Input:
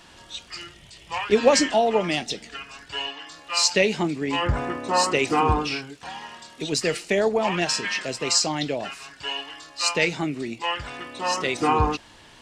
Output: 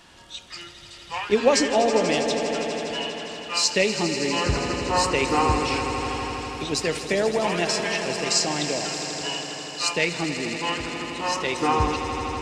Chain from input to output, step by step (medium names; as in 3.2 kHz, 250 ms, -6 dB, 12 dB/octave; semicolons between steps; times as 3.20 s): echo with a slow build-up 81 ms, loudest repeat 5, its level -13 dB; trim -1.5 dB